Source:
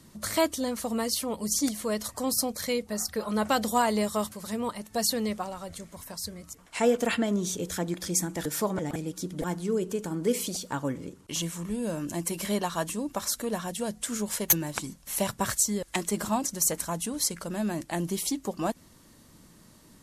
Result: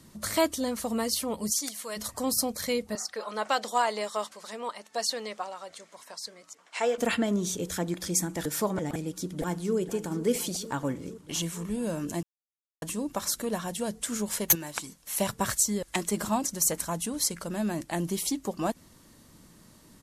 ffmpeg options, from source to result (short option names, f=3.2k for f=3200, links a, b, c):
-filter_complex "[0:a]asplit=3[a][b][c];[a]afade=t=out:st=1.5:d=0.02[d];[b]highpass=f=1.3k:p=1,afade=t=in:st=1.5:d=0.02,afade=t=out:st=1.96:d=0.02[e];[c]afade=t=in:st=1.96:d=0.02[f];[d][e][f]amix=inputs=3:normalize=0,asettb=1/sr,asplit=3[g][h][i];[g]atrim=end=2.954[j];[h]atrim=start=2.95:end=6.98,asetpts=PTS-STARTPTS,afade=t=in:d=0.004:c=qsin,afade=t=out:st=4.026:d=0.004:c=qsin,highpass=510,lowpass=6.8k[k];[i]atrim=start=6.976[l];[j][k]acrossfade=d=0.004:c1=hsin:c2=qsin[m];[m][l]acrossfade=d=0.004:c1=qsin:c2=hsin,asplit=2[n][o];[o]afade=t=in:st=8.93:d=0.01,afade=t=out:st=9.76:d=0.01,aecho=0:1:470|940|1410|1880|2350|2820|3290|3760|4230|4700|5170|5640:0.188365|0.150692|0.120554|0.0964428|0.0771543|0.0617234|0.0493787|0.039503|0.0316024|0.0252819|0.0202255|0.0161804[p];[n][p]amix=inputs=2:normalize=0,asettb=1/sr,asplit=3[q][r][s];[q]atrim=end=14.554[t];[r]atrim=start=14.55:end=15.2,asetpts=PTS-STARTPTS,afade=t=in:d=0.004:c=qsin,afade=t=out:st=0.646:d=0.004:c=qsin,lowshelf=f=430:g=-10[u];[s]atrim=start=15.196[v];[t][u]acrossfade=d=0.004:c1=hsin:c2=qsin[w];[w][v]acrossfade=d=0.004:c1=qsin:c2=hsin,asplit=3[x][y][z];[x]atrim=end=12.23,asetpts=PTS-STARTPTS,afade=t=out:st=12.226:d=0.004:c=hsin[aa];[y]atrim=start=12.23:end=12.82,asetpts=PTS-STARTPTS,volume=0[ab];[z]atrim=start=12.82,asetpts=PTS-STARTPTS,afade=t=in:d=0.004:c=hsin[ac];[aa][ab][ac]concat=n=3:v=0:a=1"